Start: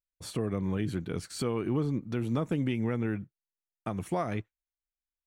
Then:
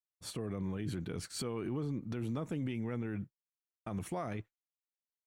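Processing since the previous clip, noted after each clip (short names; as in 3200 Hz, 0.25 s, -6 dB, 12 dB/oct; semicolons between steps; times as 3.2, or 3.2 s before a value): expander -39 dBFS; limiter -29 dBFS, peak gain reduction 8.5 dB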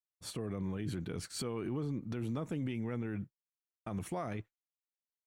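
nothing audible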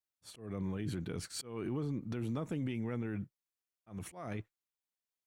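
auto swell 0.202 s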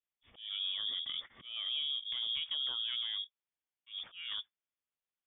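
air absorption 160 m; inverted band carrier 3500 Hz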